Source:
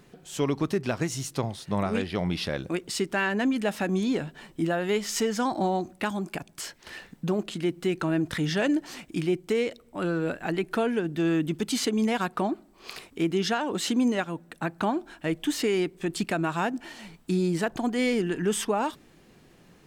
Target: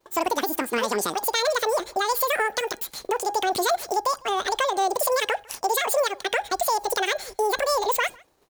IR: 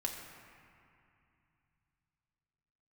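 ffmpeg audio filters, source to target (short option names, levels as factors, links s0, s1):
-filter_complex "[0:a]bandreject=f=350.3:t=h:w=4,bandreject=f=700.6:t=h:w=4,bandreject=f=1050.9:t=h:w=4,bandreject=f=1401.2:t=h:w=4,bandreject=f=1751.5:t=h:w=4,bandreject=f=2101.8:t=h:w=4,bandreject=f=2452.1:t=h:w=4,bandreject=f=2802.4:t=h:w=4,bandreject=f=3152.7:t=h:w=4,bandreject=f=3503:t=h:w=4,bandreject=f=3853.3:t=h:w=4,bandreject=f=4203.6:t=h:w=4,bandreject=f=4553.9:t=h:w=4,agate=range=0.0224:threshold=0.00631:ratio=3:detection=peak,highshelf=f=5500:g=7,asplit=2[s0][s1];[s1]acompressor=threshold=0.0251:ratio=6,volume=1[s2];[s0][s2]amix=inputs=2:normalize=0,asplit=2[s3][s4];[s4]adelay=355.7,volume=0.0501,highshelf=f=4000:g=-8[s5];[s3][s5]amix=inputs=2:normalize=0,asetrate=103194,aresample=44100"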